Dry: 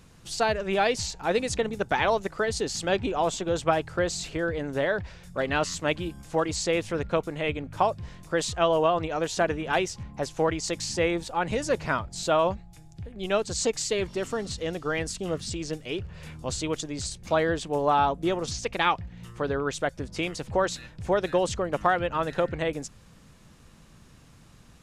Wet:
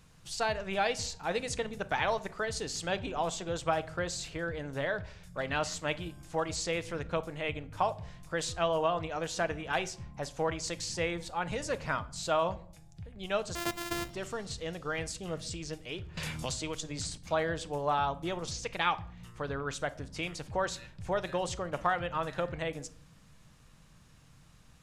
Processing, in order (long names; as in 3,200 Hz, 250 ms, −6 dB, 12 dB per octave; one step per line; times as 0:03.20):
0:13.55–0:14.10: samples sorted by size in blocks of 128 samples
parametric band 330 Hz −6 dB 1.4 octaves
convolution reverb RT60 0.55 s, pre-delay 6 ms, DRR 12.5 dB
0:16.17–0:17.18: multiband upward and downward compressor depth 100%
level −5 dB